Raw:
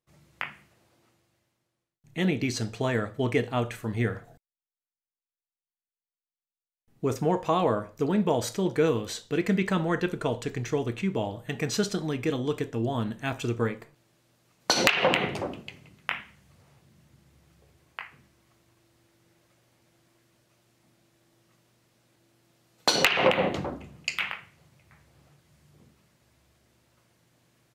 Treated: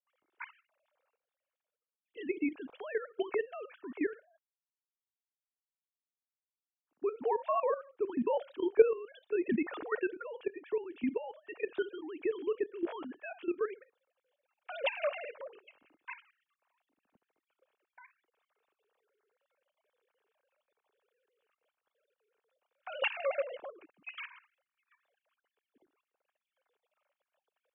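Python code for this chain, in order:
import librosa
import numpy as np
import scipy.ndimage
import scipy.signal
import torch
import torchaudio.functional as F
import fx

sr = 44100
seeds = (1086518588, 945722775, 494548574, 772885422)

y = fx.sine_speech(x, sr)
y = fx.notch(y, sr, hz=2000.0, q=9.6)
y = fx.level_steps(y, sr, step_db=13)
y = F.gain(torch.from_numpy(y), -3.0).numpy()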